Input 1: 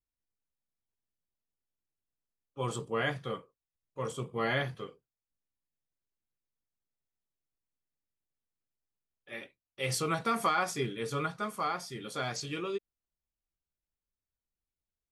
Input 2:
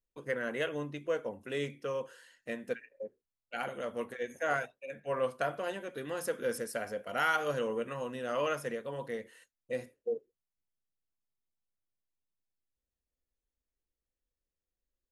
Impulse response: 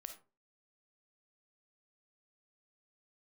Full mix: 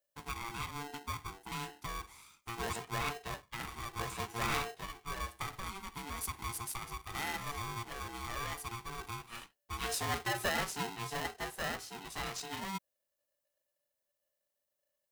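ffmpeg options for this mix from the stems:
-filter_complex "[0:a]volume=-5dB[link_01];[1:a]highshelf=frequency=7000:gain=8,acompressor=threshold=-39dB:ratio=2,volume=-2dB[link_02];[link_01][link_02]amix=inputs=2:normalize=0,highshelf=frequency=6800:gain=5,aeval=exprs='val(0)*sgn(sin(2*PI*580*n/s))':channel_layout=same"

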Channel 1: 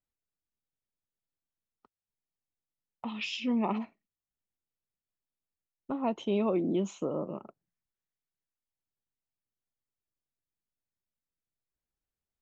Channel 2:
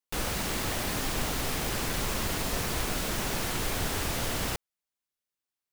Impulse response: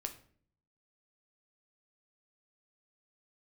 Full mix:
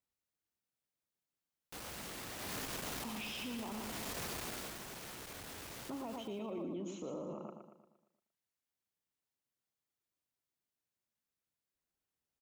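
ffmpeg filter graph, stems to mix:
-filter_complex "[0:a]acompressor=threshold=-38dB:ratio=6,volume=0.5dB,asplit=3[link_01][link_02][link_03];[link_02]volume=-6dB[link_04];[1:a]asoftclip=type=tanh:threshold=-34.5dB,adelay=1600,volume=-2dB,afade=type=in:start_time=2.36:duration=0.24:silence=0.473151,afade=type=out:start_time=4.28:duration=0.51:silence=0.375837,asplit=2[link_05][link_06];[link_06]volume=-11.5dB[link_07];[link_03]apad=whole_len=322989[link_08];[link_05][link_08]sidechaincompress=threshold=-42dB:ratio=8:attack=27:release=869[link_09];[link_04][link_07]amix=inputs=2:normalize=0,aecho=0:1:116|232|348|464|580|696|812:1|0.48|0.23|0.111|0.0531|0.0255|0.0122[link_10];[link_01][link_09][link_10]amix=inputs=3:normalize=0,highpass=frequency=120:poles=1,alimiter=level_in=10.5dB:limit=-24dB:level=0:latency=1:release=10,volume=-10.5dB"

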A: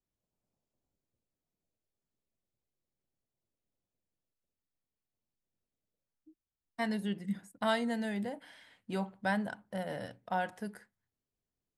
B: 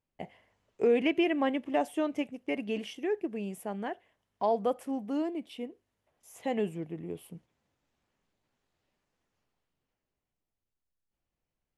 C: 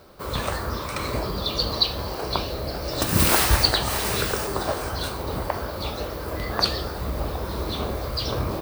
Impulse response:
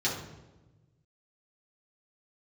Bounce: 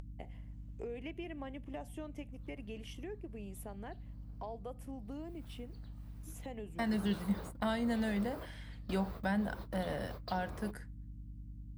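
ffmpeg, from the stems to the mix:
-filter_complex "[0:a]aeval=exprs='val(0)+0.002*(sin(2*PI*60*n/s)+sin(2*PI*2*60*n/s)/2+sin(2*PI*3*60*n/s)/3+sin(2*PI*4*60*n/s)/4+sin(2*PI*5*60*n/s)/5)':channel_layout=same,volume=1.5dB,asplit=2[link_01][link_02];[1:a]aeval=exprs='val(0)+0.00398*(sin(2*PI*50*n/s)+sin(2*PI*2*50*n/s)/2+sin(2*PI*3*50*n/s)/3+sin(2*PI*4*50*n/s)/4+sin(2*PI*5*50*n/s)/5)':channel_layout=same,volume=-6dB[link_03];[2:a]bass=frequency=250:gain=-3,treble=frequency=4000:gain=-10,adelay=2100,volume=-11.5dB[link_04];[link_02]apad=whole_len=472548[link_05];[link_04][link_05]sidechaingate=range=-33dB:threshold=-47dB:ratio=16:detection=peak[link_06];[link_03][link_06]amix=inputs=2:normalize=0,highshelf=frequency=9300:gain=9,acompressor=threshold=-45dB:ratio=3,volume=0dB[link_07];[link_01][link_07]amix=inputs=2:normalize=0,acrossover=split=330[link_08][link_09];[link_09]acompressor=threshold=-36dB:ratio=3[link_10];[link_08][link_10]amix=inputs=2:normalize=0,aeval=exprs='val(0)+0.00251*(sin(2*PI*50*n/s)+sin(2*PI*2*50*n/s)/2+sin(2*PI*3*50*n/s)/3+sin(2*PI*4*50*n/s)/4+sin(2*PI*5*50*n/s)/5)':channel_layout=same,acompressor=mode=upward:threshold=-45dB:ratio=2.5"

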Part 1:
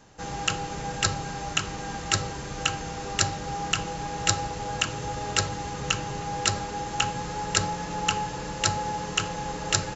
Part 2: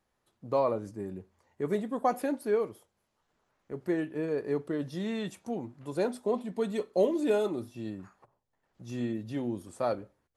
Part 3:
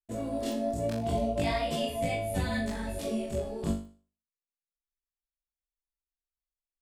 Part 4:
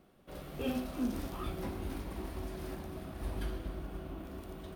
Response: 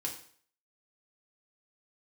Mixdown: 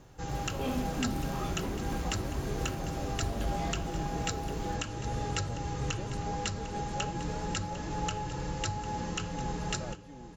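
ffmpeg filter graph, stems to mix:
-filter_complex "[0:a]lowshelf=frequency=260:gain=10.5,alimiter=limit=-13dB:level=0:latency=1:release=315,flanger=delay=2.2:depth=2.6:regen=-64:speed=0.36:shape=sinusoidal,volume=-2.5dB,asplit=2[link_01][link_02];[link_02]volume=-14.5dB[link_03];[1:a]acompressor=threshold=-28dB:ratio=6,volume=-12.5dB,asplit=3[link_04][link_05][link_06];[link_05]volume=-4.5dB[link_07];[2:a]adelay=2150,volume=-12dB[link_08];[3:a]asoftclip=type=hard:threshold=-32dB,volume=2.5dB[link_09];[link_06]apad=whole_len=395454[link_10];[link_08][link_10]sidechaincompress=threshold=-48dB:ratio=8:attack=16:release=1470[link_11];[link_03][link_07]amix=inputs=2:normalize=0,aecho=0:1:750:1[link_12];[link_01][link_04][link_11][link_09][link_12]amix=inputs=5:normalize=0"

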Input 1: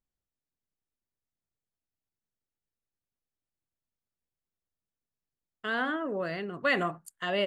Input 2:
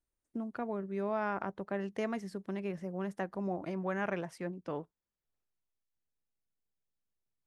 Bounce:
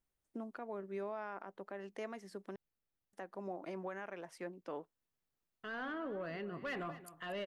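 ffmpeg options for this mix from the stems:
ffmpeg -i stem1.wav -i stem2.wav -filter_complex "[0:a]asoftclip=type=tanh:threshold=-25.5dB,equalizer=frequency=7500:width=0.87:gain=-11.5,alimiter=level_in=13dB:limit=-24dB:level=0:latency=1:release=198,volume=-13dB,volume=1dB,asplit=2[link_01][link_02];[link_02]volume=-15dB[link_03];[1:a]highpass=300,alimiter=level_in=8dB:limit=-24dB:level=0:latency=1:release=347,volume=-8dB,volume=-1dB,asplit=3[link_04][link_05][link_06];[link_04]atrim=end=2.56,asetpts=PTS-STARTPTS,afade=type=out:start_time=2.556:duration=0.004:curve=hsin[link_07];[link_05]atrim=start=2.56:end=3.13,asetpts=PTS-STARTPTS,volume=0[link_08];[link_06]atrim=start=3.13,asetpts=PTS-STARTPTS,afade=type=in:duration=0.004:curve=hsin[link_09];[link_07][link_08][link_09]concat=n=3:v=0:a=1[link_10];[link_03]aecho=0:1:235:1[link_11];[link_01][link_10][link_11]amix=inputs=3:normalize=0" out.wav

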